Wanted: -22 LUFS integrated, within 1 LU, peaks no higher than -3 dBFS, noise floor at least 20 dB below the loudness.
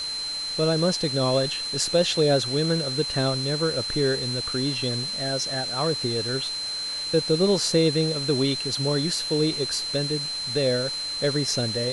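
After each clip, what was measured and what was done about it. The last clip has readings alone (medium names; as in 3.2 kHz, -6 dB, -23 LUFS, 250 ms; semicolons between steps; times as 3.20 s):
steady tone 4.1 kHz; tone level -28 dBFS; noise floor -31 dBFS; noise floor target -44 dBFS; loudness -24.0 LUFS; peak level -8.0 dBFS; loudness target -22.0 LUFS
-> band-stop 4.1 kHz, Q 30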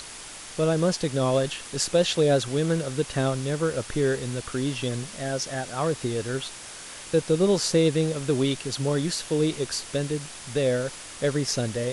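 steady tone not found; noise floor -41 dBFS; noise floor target -46 dBFS
-> noise reduction 6 dB, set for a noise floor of -41 dBFS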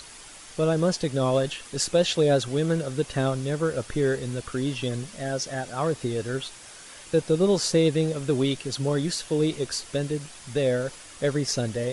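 noise floor -45 dBFS; noise floor target -46 dBFS
-> noise reduction 6 dB, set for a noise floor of -45 dBFS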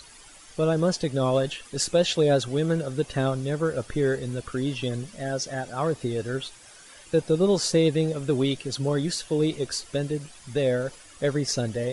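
noise floor -49 dBFS; loudness -26.0 LUFS; peak level -7.5 dBFS; loudness target -22.0 LUFS
-> trim +4 dB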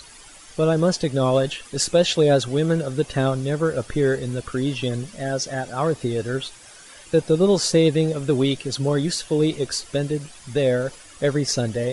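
loudness -22.0 LUFS; peak level -3.5 dBFS; noise floor -45 dBFS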